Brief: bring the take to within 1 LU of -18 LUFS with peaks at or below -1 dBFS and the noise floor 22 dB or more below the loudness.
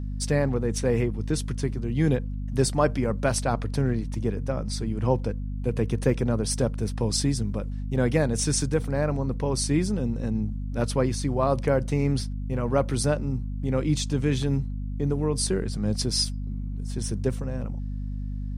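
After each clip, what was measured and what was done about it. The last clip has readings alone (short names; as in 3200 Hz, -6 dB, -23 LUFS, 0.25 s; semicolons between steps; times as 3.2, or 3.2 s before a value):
hum 50 Hz; harmonics up to 250 Hz; hum level -28 dBFS; loudness -26.5 LUFS; peak -8.0 dBFS; loudness target -18.0 LUFS
-> notches 50/100/150/200/250 Hz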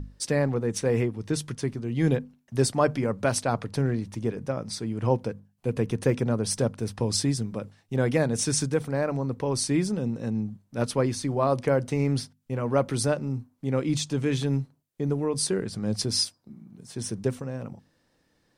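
hum none; loudness -27.5 LUFS; peak -9.0 dBFS; loudness target -18.0 LUFS
-> gain +9.5 dB; limiter -1 dBFS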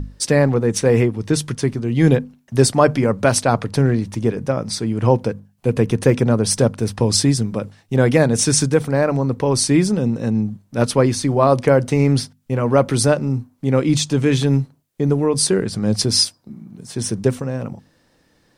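loudness -18.0 LUFS; peak -1.0 dBFS; noise floor -60 dBFS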